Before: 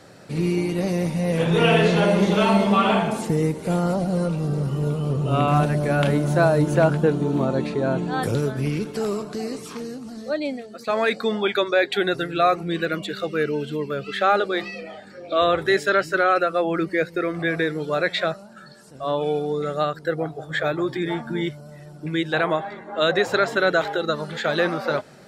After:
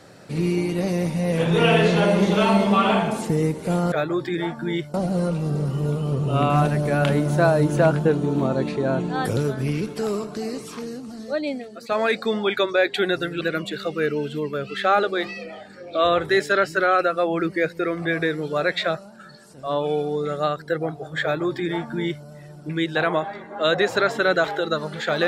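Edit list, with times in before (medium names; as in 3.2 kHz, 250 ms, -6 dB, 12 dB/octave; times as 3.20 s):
12.39–12.78 s: delete
20.60–21.62 s: copy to 3.92 s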